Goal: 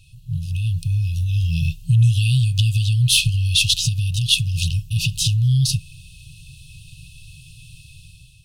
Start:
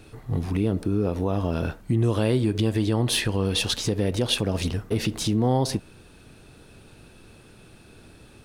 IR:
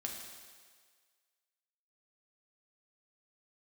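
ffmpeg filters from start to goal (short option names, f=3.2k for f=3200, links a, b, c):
-af "afftfilt=real='re*(1-between(b*sr/4096,170,2500))':imag='im*(1-between(b*sr/4096,170,2500))':win_size=4096:overlap=0.75,dynaudnorm=f=270:g=5:m=10dB"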